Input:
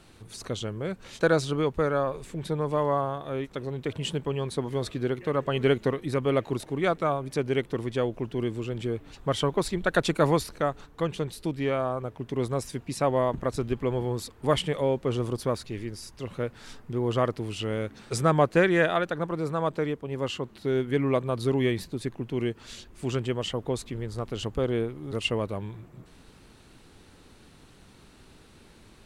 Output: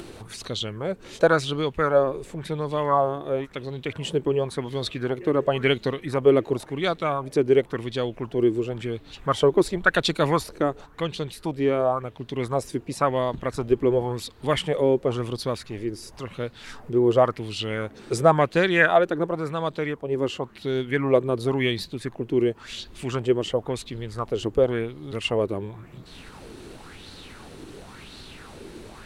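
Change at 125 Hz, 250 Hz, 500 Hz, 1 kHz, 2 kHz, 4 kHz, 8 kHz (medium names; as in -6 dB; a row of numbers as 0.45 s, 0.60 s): 0.0 dB, +2.5 dB, +4.5 dB, +4.0 dB, +5.5 dB, +4.0 dB, +0.5 dB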